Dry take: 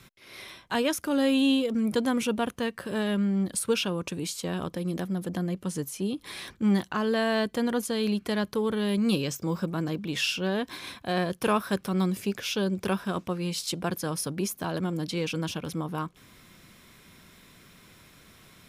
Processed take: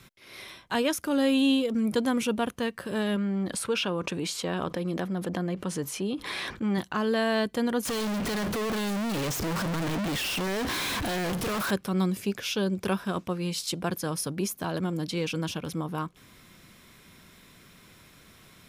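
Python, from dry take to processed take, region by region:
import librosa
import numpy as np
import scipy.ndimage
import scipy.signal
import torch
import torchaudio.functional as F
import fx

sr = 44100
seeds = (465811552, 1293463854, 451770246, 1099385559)

y = fx.chain(x, sr, fx.lowpass(hz=2400.0, slope=6),
    fx.low_shelf(hz=320.0, db=-9.0),
    fx.env_flatten(amount_pct=50), at=(3.16, 6.78))
y = fx.chain(y, sr, fx.power_curve(exponent=0.35),
    fx.clip_hard(threshold_db=-28.5),
    fx.high_shelf(hz=4400.0, db=-4.5), at=(7.85, 11.71))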